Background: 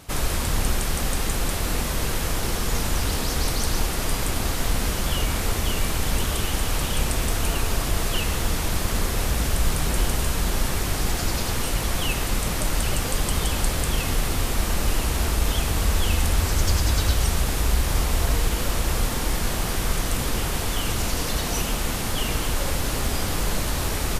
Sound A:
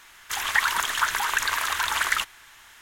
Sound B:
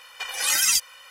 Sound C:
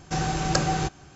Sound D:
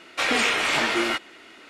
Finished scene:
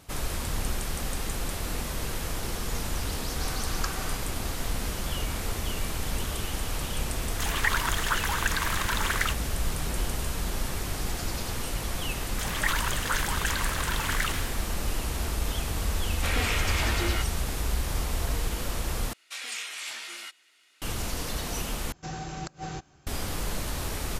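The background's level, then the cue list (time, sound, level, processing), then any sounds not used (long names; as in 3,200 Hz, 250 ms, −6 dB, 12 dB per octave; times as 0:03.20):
background −7 dB
0:03.29: mix in C −10.5 dB + low shelf with overshoot 780 Hz −12.5 dB, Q 3
0:07.09: mix in A −4.5 dB
0:12.08: mix in A −7.5 dB + level that may fall only so fast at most 53 dB per second
0:16.05: mix in D −8 dB
0:19.13: overwrite with D −5 dB + first-order pre-emphasis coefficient 0.97
0:21.92: overwrite with C −10 dB + gate with flip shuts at −11 dBFS, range −26 dB
not used: B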